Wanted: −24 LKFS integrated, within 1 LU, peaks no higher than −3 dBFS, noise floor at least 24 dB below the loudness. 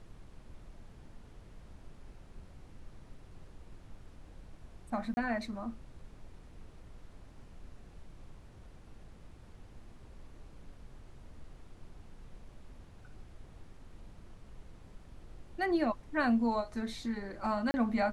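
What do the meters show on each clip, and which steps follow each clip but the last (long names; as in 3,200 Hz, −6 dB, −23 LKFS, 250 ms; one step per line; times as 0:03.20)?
number of dropouts 2; longest dropout 30 ms; background noise floor −55 dBFS; target noise floor −58 dBFS; integrated loudness −34.0 LKFS; sample peak −19.5 dBFS; target loudness −24.0 LKFS
→ repair the gap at 0:05.14/0:17.71, 30 ms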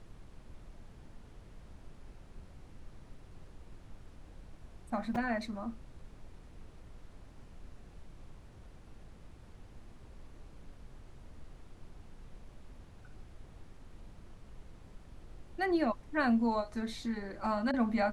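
number of dropouts 0; background noise floor −55 dBFS; target noise floor −58 dBFS
→ noise reduction from a noise print 6 dB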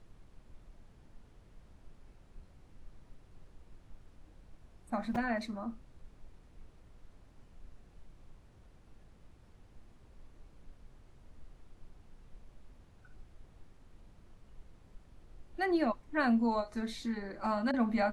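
background noise floor −61 dBFS; integrated loudness −33.5 LKFS; sample peak −19.5 dBFS; target loudness −24.0 LKFS
→ level +9.5 dB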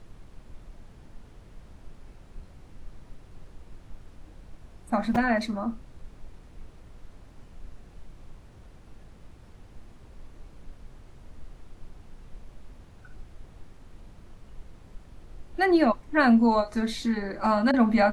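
integrated loudness −24.0 LKFS; sample peak −10.0 dBFS; background noise floor −51 dBFS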